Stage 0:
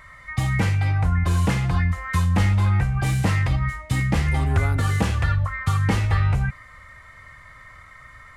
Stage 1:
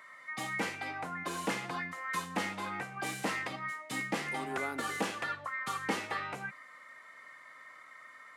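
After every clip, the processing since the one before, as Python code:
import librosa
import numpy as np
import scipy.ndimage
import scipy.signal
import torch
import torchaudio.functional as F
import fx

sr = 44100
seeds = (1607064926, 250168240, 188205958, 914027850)

y = scipy.signal.sosfilt(scipy.signal.butter(4, 250.0, 'highpass', fs=sr, output='sos'), x)
y = y * librosa.db_to_amplitude(-6.5)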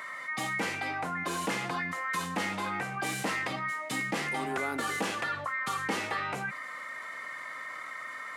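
y = fx.env_flatten(x, sr, amount_pct=50)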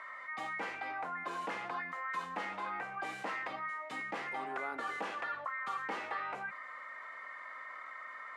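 y = fx.bandpass_q(x, sr, hz=1000.0, q=0.76)
y = y * librosa.db_to_amplitude(-4.0)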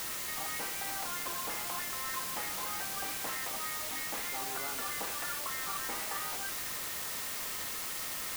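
y = fx.quant_dither(x, sr, seeds[0], bits=6, dither='triangular')
y = y * librosa.db_to_amplitude(-2.5)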